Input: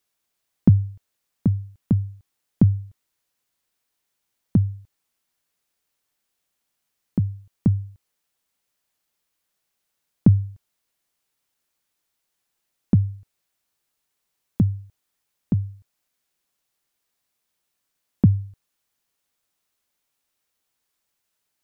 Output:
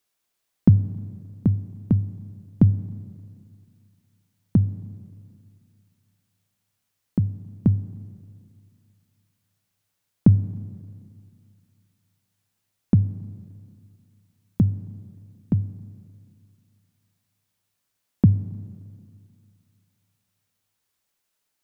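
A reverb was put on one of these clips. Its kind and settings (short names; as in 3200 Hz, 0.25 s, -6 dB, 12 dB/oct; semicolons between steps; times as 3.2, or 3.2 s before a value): Schroeder reverb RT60 2.4 s, combs from 30 ms, DRR 15 dB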